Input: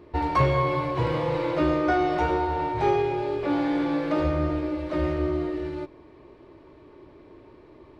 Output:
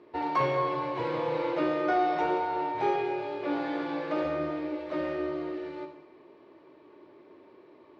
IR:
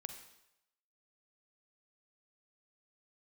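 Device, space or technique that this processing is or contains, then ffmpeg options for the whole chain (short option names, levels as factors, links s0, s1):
supermarket ceiling speaker: -filter_complex "[0:a]highpass=250,lowpass=5300[s0];[1:a]atrim=start_sample=2205[s1];[s0][s1]afir=irnorm=-1:irlink=0"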